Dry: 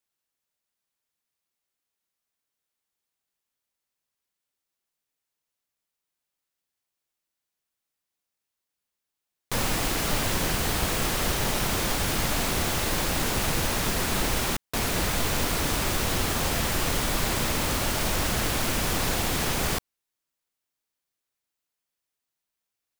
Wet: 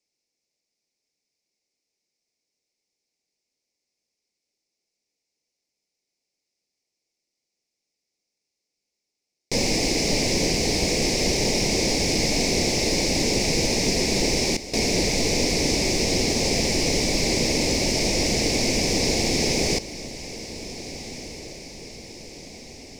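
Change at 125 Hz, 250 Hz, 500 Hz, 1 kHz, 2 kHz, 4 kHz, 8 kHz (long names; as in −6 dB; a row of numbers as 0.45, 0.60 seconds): +1.5, +7.0, +7.5, −3.0, +2.0, +6.5, +5.0 decibels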